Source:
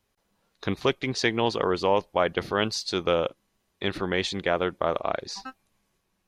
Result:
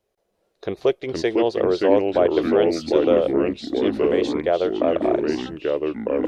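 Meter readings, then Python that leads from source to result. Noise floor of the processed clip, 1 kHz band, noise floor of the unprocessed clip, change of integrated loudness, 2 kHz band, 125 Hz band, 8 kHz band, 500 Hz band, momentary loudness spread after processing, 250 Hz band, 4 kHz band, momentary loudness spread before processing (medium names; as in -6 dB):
-72 dBFS, +0.5 dB, -75 dBFS, +6.0 dB, -2.5 dB, -1.0 dB, no reading, +8.5 dB, 7 LU, +10.0 dB, -3.5 dB, 9 LU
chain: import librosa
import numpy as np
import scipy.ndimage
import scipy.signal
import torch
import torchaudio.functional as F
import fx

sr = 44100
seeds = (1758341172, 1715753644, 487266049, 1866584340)

y = fx.band_shelf(x, sr, hz=500.0, db=12.0, octaves=1.3)
y = fx.echo_pitch(y, sr, ms=341, semitones=-3, count=3, db_per_echo=-3.0)
y = y * 10.0 ** (-5.5 / 20.0)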